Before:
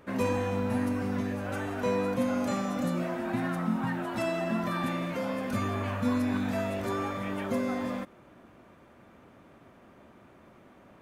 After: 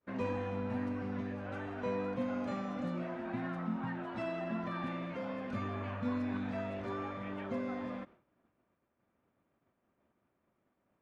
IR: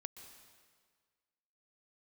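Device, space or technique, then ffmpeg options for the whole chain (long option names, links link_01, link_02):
hearing-loss simulation: -af "lowpass=3400,agate=range=-33dB:threshold=-44dB:ratio=3:detection=peak,volume=-7.5dB"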